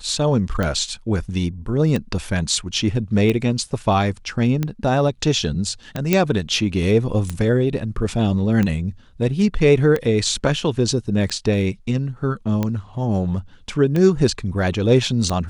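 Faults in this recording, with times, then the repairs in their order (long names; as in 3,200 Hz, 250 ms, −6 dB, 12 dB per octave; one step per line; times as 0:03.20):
scratch tick 45 rpm −10 dBFS
0:06.13: click −2 dBFS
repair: click removal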